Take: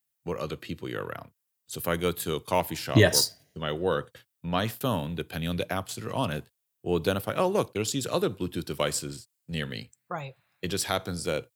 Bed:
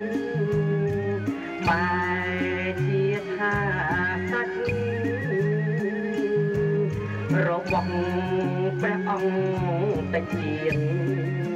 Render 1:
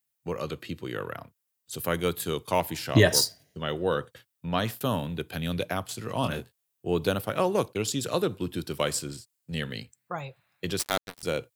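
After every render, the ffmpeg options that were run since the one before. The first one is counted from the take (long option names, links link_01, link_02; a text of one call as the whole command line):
ffmpeg -i in.wav -filter_complex "[0:a]asettb=1/sr,asplit=3[link_01][link_02][link_03];[link_01]atrim=end=6.214[link_04];[link_02]atrim=start=6.21:end=6.87,asetpts=PTS-STARTPTS,afade=type=in:duration=0.004:curve=qsin,afade=type=out:start_time=0.656:duration=0.004:curve=qsin,asplit=2[link_05][link_06];[link_06]adelay=24,volume=-6dB[link_07];[link_05][link_07]amix=inputs=2:normalize=0,atrim=end_sample=29106[link_08];[link_03]atrim=start=6.866[link_09];[link_04][link_08]acrossfade=duration=0.004:curve1=hsin:curve2=qsin[link_10];[link_10][link_09]acrossfade=duration=0.004:curve1=qsin:curve2=hsin,asettb=1/sr,asplit=3[link_11][link_12][link_13];[link_11]atrim=end=10.794[link_14];[link_12]atrim=start=10.79:end=11.23,asetpts=PTS-STARTPTS,afade=type=in:duration=0.004:curve=qsin,afade=type=out:start_time=0.436:duration=0.004:curve=qsin,acrusher=bits=3:mix=0:aa=0.5[link_15];[link_13]atrim=start=11.226[link_16];[link_14][link_15]acrossfade=duration=0.004:curve1=hsin:curve2=qsin[link_17];[link_17][link_16]acrossfade=duration=0.004:curve1=qsin:curve2=hsin" out.wav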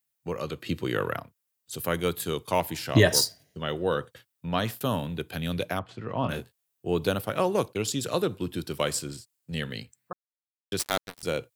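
ffmpeg -i in.wav -filter_complex "[0:a]asettb=1/sr,asplit=3[link_01][link_02][link_03];[link_01]atrim=end=0.664[link_04];[link_02]atrim=start=0.66:end=1.2,asetpts=PTS-STARTPTS,afade=type=in:duration=0.004:curve=qsin,afade=type=out:start_time=0.536:duration=0.004:curve=qsin,acontrast=50[link_05];[link_03]atrim=start=1.196[link_06];[link_04][link_05]acrossfade=duration=0.004:curve1=hsin:curve2=qsin[link_07];[link_07][link_06]acrossfade=duration=0.004:curve1=qsin:curve2=hsin,asettb=1/sr,asplit=3[link_08][link_09][link_10];[link_08]atrim=end=5.794[link_11];[link_09]atrim=start=5.79:end=6.29,asetpts=PTS-STARTPTS,afade=type=in:duration=0.004:curve=qsin,afade=type=out:start_time=0.496:duration=0.004:curve=qsin,lowpass=2100[link_12];[link_10]atrim=start=6.286[link_13];[link_11][link_12]acrossfade=duration=0.004:curve1=hsin:curve2=qsin[link_14];[link_14][link_13]acrossfade=duration=0.004:curve1=qsin:curve2=hsin,asplit=3[link_15][link_16][link_17];[link_15]atrim=end=10.13,asetpts=PTS-STARTPTS,afade=type=out:start_time=10.126:duration=0.004:curve=hsin[link_18];[link_16]atrim=start=10.13:end=10.72,asetpts=PTS-STARTPTS,volume=0[link_19];[link_17]atrim=start=10.72,asetpts=PTS-STARTPTS,afade=type=in:duration=0.004:curve=hsin[link_20];[link_18][link_19][link_20]concat=n=3:v=0:a=1" out.wav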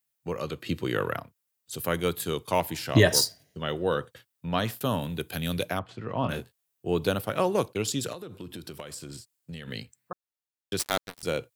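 ffmpeg -i in.wav -filter_complex "[0:a]asettb=1/sr,asplit=3[link_01][link_02][link_03];[link_01]atrim=end=5.014[link_04];[link_02]atrim=start=5.01:end=5.7,asetpts=PTS-STARTPTS,afade=type=in:duration=0.004:curve=qsin,afade=type=out:start_time=0.686:duration=0.004:curve=qsin,highshelf=frequency=6000:gain=9[link_05];[link_03]atrim=start=5.696[link_06];[link_04][link_05]acrossfade=duration=0.004:curve1=hsin:curve2=qsin[link_07];[link_07][link_06]acrossfade=duration=0.004:curve1=qsin:curve2=hsin,asettb=1/sr,asplit=3[link_08][link_09][link_10];[link_08]atrim=end=8.124[link_11];[link_09]atrim=start=8.12:end=9.68,asetpts=PTS-STARTPTS,afade=type=in:duration=0.004:curve=qsin,afade=type=out:start_time=1.556:duration=0.004:curve=qsin,acompressor=threshold=-35dB:ratio=20:attack=3.2:release=140:knee=1:detection=peak[link_12];[link_10]atrim=start=9.676[link_13];[link_11][link_12]acrossfade=duration=0.004:curve1=hsin:curve2=qsin[link_14];[link_14][link_13]acrossfade=duration=0.004:curve1=qsin:curve2=hsin" out.wav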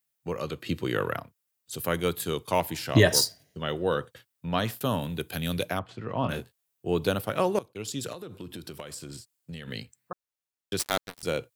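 ffmpeg -i in.wav -filter_complex "[0:a]asplit=2[link_01][link_02];[link_01]atrim=end=7.59,asetpts=PTS-STARTPTS,afade=type=out:start_time=7.586:duration=0.004:curve=hsin:silence=0.1[link_03];[link_02]atrim=start=7.59,asetpts=PTS-STARTPTS,afade=type=in:duration=0.63:silence=0.1[link_04];[link_03][link_04]concat=n=2:v=0:a=1" out.wav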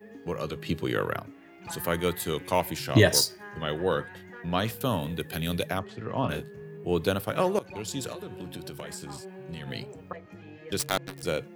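ffmpeg -i in.wav -i bed.wav -filter_complex "[1:a]volume=-19.5dB[link_01];[0:a][link_01]amix=inputs=2:normalize=0" out.wav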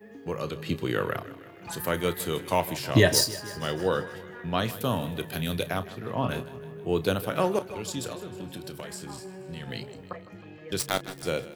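ffmpeg -i in.wav -filter_complex "[0:a]asplit=2[link_01][link_02];[link_02]adelay=32,volume=-14dB[link_03];[link_01][link_03]amix=inputs=2:normalize=0,aecho=1:1:157|314|471|628|785|942:0.15|0.0898|0.0539|0.0323|0.0194|0.0116" out.wav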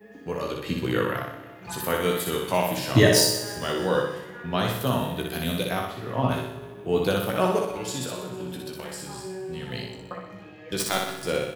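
ffmpeg -i in.wav -filter_complex "[0:a]asplit=2[link_01][link_02];[link_02]adelay=16,volume=-5.5dB[link_03];[link_01][link_03]amix=inputs=2:normalize=0,aecho=1:1:61|122|183|244|305|366|427:0.668|0.341|0.174|0.0887|0.0452|0.0231|0.0118" out.wav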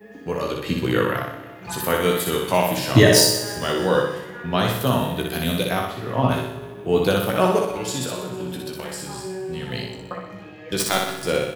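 ffmpeg -i in.wav -af "volume=4.5dB,alimiter=limit=-2dB:level=0:latency=1" out.wav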